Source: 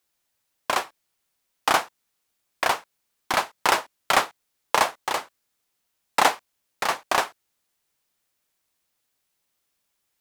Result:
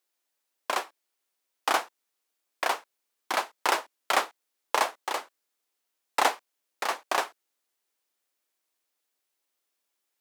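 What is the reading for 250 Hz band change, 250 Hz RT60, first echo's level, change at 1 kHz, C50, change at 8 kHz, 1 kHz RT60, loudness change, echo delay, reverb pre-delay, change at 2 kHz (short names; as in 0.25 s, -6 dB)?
-6.0 dB, none, none, -4.5 dB, none, -5.0 dB, none, -5.0 dB, none, none, -5.0 dB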